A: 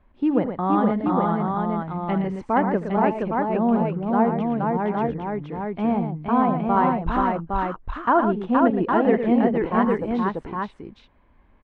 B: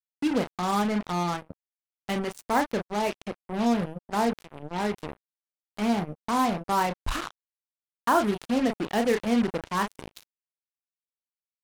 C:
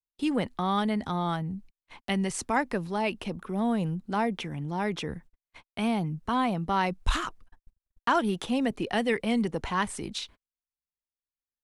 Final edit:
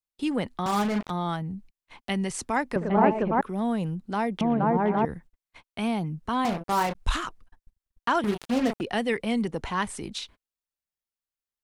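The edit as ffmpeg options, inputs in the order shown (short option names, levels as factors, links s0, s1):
-filter_complex "[1:a]asplit=3[s0][s1][s2];[0:a]asplit=2[s3][s4];[2:a]asplit=6[s5][s6][s7][s8][s9][s10];[s5]atrim=end=0.662[s11];[s0]atrim=start=0.658:end=1.102[s12];[s6]atrim=start=1.098:end=2.762[s13];[s3]atrim=start=2.758:end=3.412[s14];[s7]atrim=start=3.408:end=4.412[s15];[s4]atrim=start=4.408:end=5.052[s16];[s8]atrim=start=5.048:end=6.452[s17];[s1]atrim=start=6.448:end=6.952[s18];[s9]atrim=start=6.948:end=8.242[s19];[s2]atrim=start=8.238:end=8.812[s20];[s10]atrim=start=8.808[s21];[s11][s12]acrossfade=d=0.004:c1=hsin:c2=hsin[s22];[s22][s13]acrossfade=d=0.004:c1=hsin:c2=hsin[s23];[s23][s14]acrossfade=d=0.004:c1=hsin:c2=hsin[s24];[s24][s15]acrossfade=d=0.004:c1=hsin:c2=hsin[s25];[s25][s16]acrossfade=d=0.004:c1=hsin:c2=hsin[s26];[s26][s17]acrossfade=d=0.004:c1=hsin:c2=hsin[s27];[s27][s18]acrossfade=d=0.004:c1=hsin:c2=hsin[s28];[s28][s19]acrossfade=d=0.004:c1=hsin:c2=hsin[s29];[s29][s20]acrossfade=d=0.004:c1=hsin:c2=hsin[s30];[s30][s21]acrossfade=d=0.004:c1=hsin:c2=hsin"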